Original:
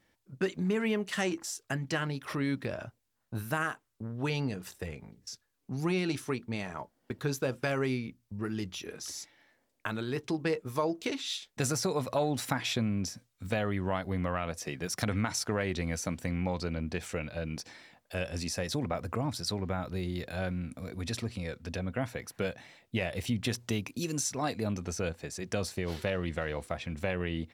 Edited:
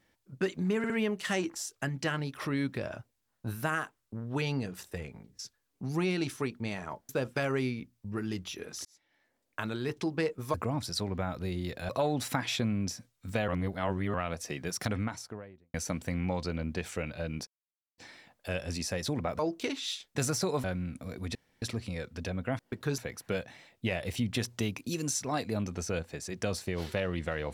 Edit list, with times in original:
0.78 stutter 0.06 s, 3 plays
6.97–7.36 move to 22.08
9.12–9.91 fade in
10.81–12.06 swap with 19.05–20.4
13.65–14.31 reverse
14.86–15.91 studio fade out
17.64 insert silence 0.51 s
21.11 insert room tone 0.27 s

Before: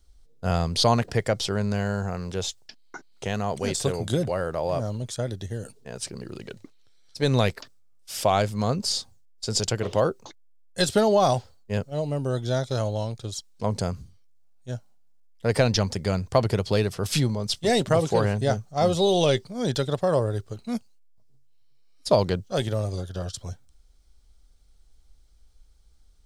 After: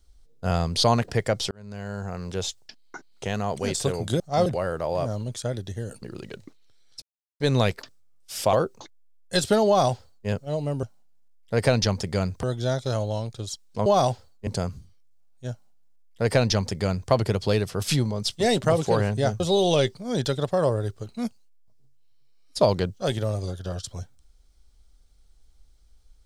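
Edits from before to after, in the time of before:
1.51–2.35 fade in
5.76–6.19 cut
7.19 insert silence 0.38 s
8.32–9.98 cut
11.12–11.73 copy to 13.71
14.75–16.35 copy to 12.28
18.64–18.9 move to 4.2

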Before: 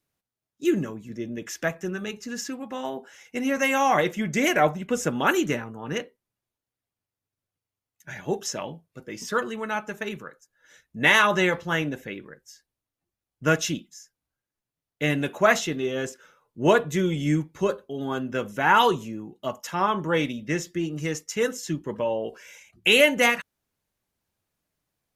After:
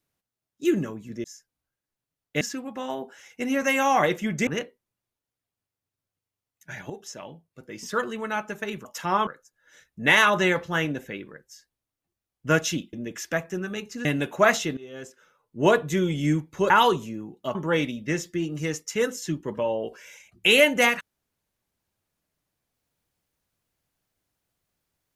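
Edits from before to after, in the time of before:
1.24–2.36 swap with 13.9–15.07
4.42–5.86 cut
8.29–9.54 fade in, from -13 dB
15.79–16.76 fade in, from -19 dB
17.72–18.69 cut
19.54–19.96 move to 10.24

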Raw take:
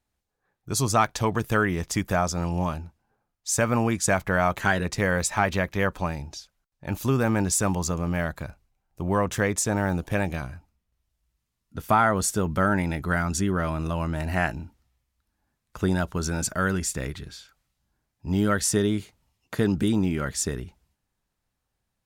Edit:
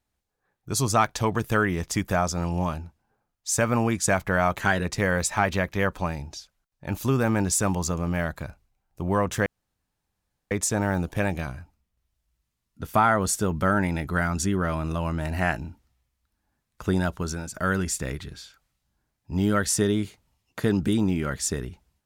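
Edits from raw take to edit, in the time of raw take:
9.46 insert room tone 1.05 s
15.98–16.49 fade out equal-power, to -13.5 dB

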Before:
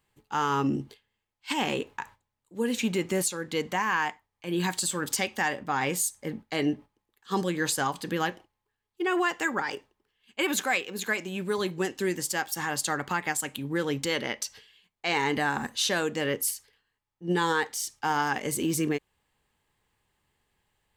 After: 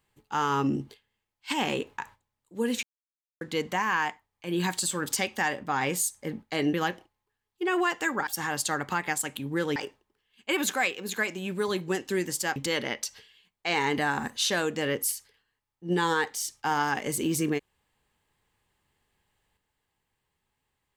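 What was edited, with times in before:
2.83–3.41 mute
6.74–8.13 cut
12.46–13.95 move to 9.66

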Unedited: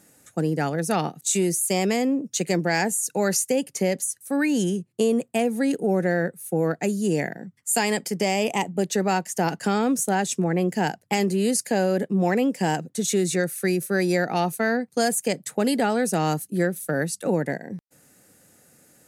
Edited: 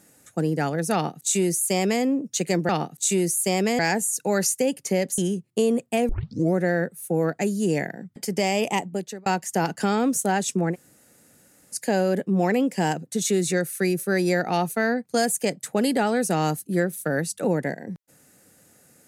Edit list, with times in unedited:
0.93–2.03 copy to 2.69
4.08–4.6 cut
5.51 tape start 0.45 s
7.58–7.99 cut
8.6–9.09 fade out
10.56–11.58 room tone, crossfade 0.06 s

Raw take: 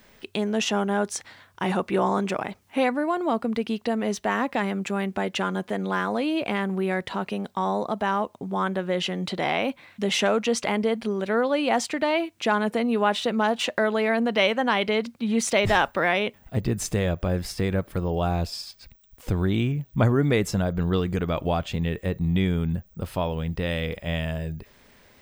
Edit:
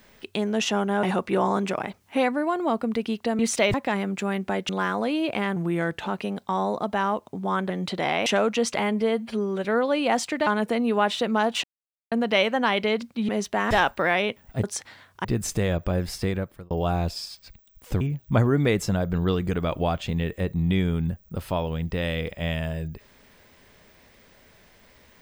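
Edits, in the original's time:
1.03–1.64 move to 16.61
4–4.42 swap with 15.33–15.68
5.37–5.82 cut
6.69–7.15 speed 90%
8.78–9.1 cut
9.66–10.16 cut
10.69–11.26 stretch 1.5×
12.08–12.51 cut
13.68–14.16 mute
17.61–18.07 fade out
19.37–19.66 cut

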